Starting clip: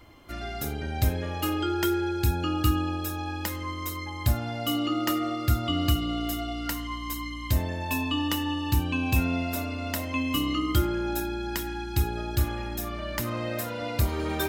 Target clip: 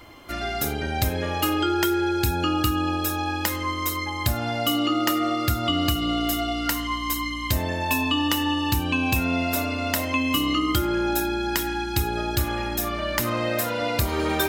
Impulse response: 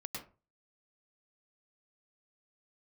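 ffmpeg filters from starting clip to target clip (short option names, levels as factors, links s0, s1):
-af "lowshelf=f=240:g=-7,acompressor=threshold=0.0447:ratio=6,volume=2.66"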